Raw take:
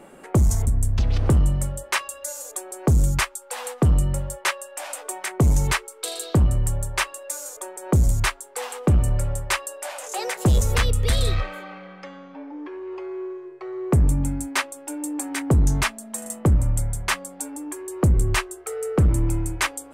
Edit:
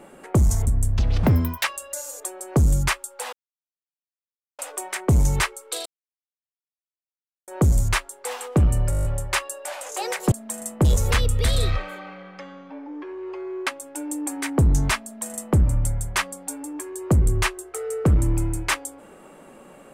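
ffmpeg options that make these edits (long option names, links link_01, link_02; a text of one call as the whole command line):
ffmpeg -i in.wav -filter_complex "[0:a]asplit=17[link_01][link_02][link_03][link_04][link_05][link_06][link_07][link_08][link_09][link_10][link_11][link_12][link_13][link_14][link_15][link_16][link_17];[link_01]atrim=end=1.234[link_18];[link_02]atrim=start=1.23:end=1.95,asetpts=PTS-STARTPTS,asetrate=78057,aresample=44100[link_19];[link_03]atrim=start=1.946:end=3.64,asetpts=PTS-STARTPTS,afade=type=out:start_time=1.69:duration=0.004:curve=hsin[link_20];[link_04]atrim=start=3.64:end=4.9,asetpts=PTS-STARTPTS,volume=0[link_21];[link_05]atrim=start=4.9:end=6.17,asetpts=PTS-STARTPTS,afade=type=in:duration=0.004:curve=hsin,afade=type=out:start_time=1.266:duration=0.004:curve=hsin[link_22];[link_06]atrim=start=6.17:end=7.79,asetpts=PTS-STARTPTS,volume=0[link_23];[link_07]atrim=start=7.79:end=9.242,asetpts=PTS-STARTPTS,afade=type=in:duration=0.004:curve=hsin[link_24];[link_08]atrim=start=9.218:end=9.242[link_25];[link_09]atrim=start=9.218:end=9.242[link_26];[link_10]atrim=start=9.218:end=9.242[link_27];[link_11]atrim=start=9.218:end=9.242[link_28];[link_12]atrim=start=9.218:end=9.242[link_29];[link_13]atrim=start=9.218:end=9.242[link_30];[link_14]atrim=start=9.218:end=10.492[link_31];[link_15]atrim=start=15.958:end=16.492[link_32];[link_16]atrim=start=10.488:end=13.312[link_33];[link_17]atrim=start=14.588[link_34];[link_18][link_19]acrossfade=duration=0.004:curve1=hsin:curve2=hsin[link_35];[link_20][link_21][link_22][link_23][link_24]concat=n=5:v=0:a=1[link_36];[link_35][link_36]acrossfade=duration=0.004:curve1=hsin:curve2=hsin[link_37];[link_37][link_25]acrossfade=duration=0.004:curve1=hsin:curve2=hsin[link_38];[link_38][link_26]acrossfade=duration=0.004:curve1=hsin:curve2=hsin[link_39];[link_39][link_27]acrossfade=duration=0.004:curve1=hsin:curve2=hsin[link_40];[link_40][link_28]acrossfade=duration=0.004:curve1=hsin:curve2=hsin[link_41];[link_41][link_29]acrossfade=duration=0.004:curve1=hsin:curve2=hsin[link_42];[link_42][link_30]acrossfade=duration=0.004:curve1=hsin:curve2=hsin[link_43];[link_43][link_31]acrossfade=duration=0.004:curve1=hsin:curve2=hsin[link_44];[link_44][link_32]acrossfade=duration=0.004:curve1=hsin:curve2=hsin[link_45];[link_45][link_33]acrossfade=duration=0.004:curve1=hsin:curve2=hsin[link_46];[link_46][link_34]acrossfade=duration=0.004:curve1=hsin:curve2=hsin" out.wav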